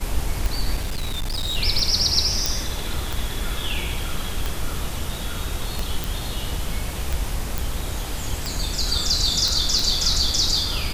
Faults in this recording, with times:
tick 45 rpm
0.77–1.57 s: clipped -21.5 dBFS
2.46 s: pop
6.04 s: pop
7.58 s: pop
9.48 s: pop

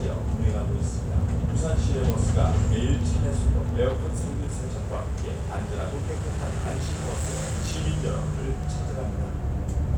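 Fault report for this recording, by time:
2.10 s: pop -12 dBFS
3.88–7.81 s: clipped -23.5 dBFS

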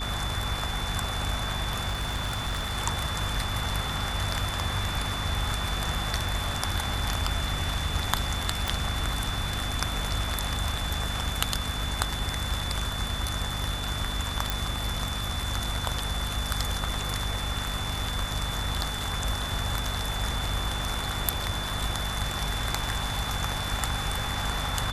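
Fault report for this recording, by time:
hum 50 Hz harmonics 5 -34 dBFS
whine 3.5 kHz -35 dBFS
1.87–2.78 s: clipped -25 dBFS
8.68 s: pop
14.50 s: pop

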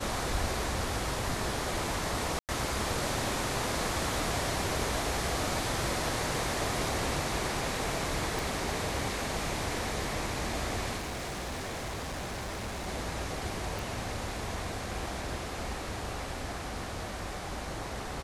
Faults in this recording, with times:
2.39–2.49 s: dropout 98 ms
8.39 s: pop
10.97–12.89 s: clipped -33.5 dBFS
13.79 s: pop

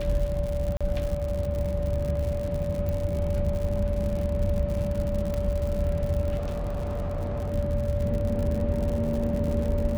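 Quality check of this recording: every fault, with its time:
crackle 110 per s -31 dBFS
whine 580 Hz -30 dBFS
0.77–0.81 s: dropout 36 ms
2.89 s: pop -19 dBFS
5.34 s: pop -18 dBFS
6.37–7.52 s: clipped -26.5 dBFS

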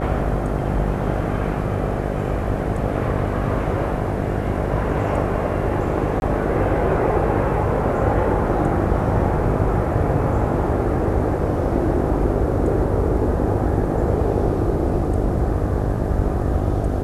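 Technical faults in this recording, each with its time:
buzz 50 Hz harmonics 15 -25 dBFS
6.20–6.22 s: dropout 21 ms

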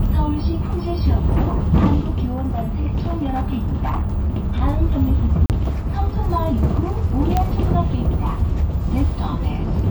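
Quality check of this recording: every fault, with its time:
2.32–4.62 s: clipped -16.5 dBFS
5.46–5.50 s: dropout 38 ms
7.37 s: pop -6 dBFS

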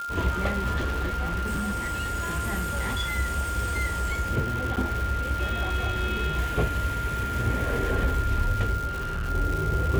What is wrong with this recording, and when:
crackle 500 per s -31 dBFS
whine 1.4 kHz -30 dBFS
0.76–3.19 s: clipped -23.5 dBFS
4.76–4.77 s: dropout 8.5 ms
8.87–9.30 s: clipped -26.5 dBFS

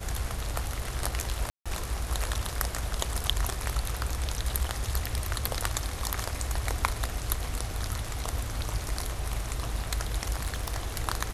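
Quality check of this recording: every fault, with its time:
1.50–1.66 s: dropout 156 ms
10.42–10.98 s: clipped -24.5 dBFS

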